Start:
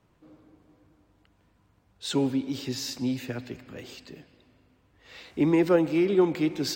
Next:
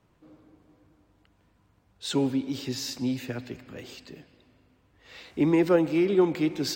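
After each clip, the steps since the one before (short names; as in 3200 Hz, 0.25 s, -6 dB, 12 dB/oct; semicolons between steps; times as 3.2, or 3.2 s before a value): nothing audible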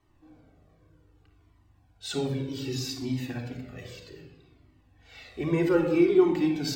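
shoebox room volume 3600 m³, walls furnished, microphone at 3.5 m; cascading flanger falling 0.64 Hz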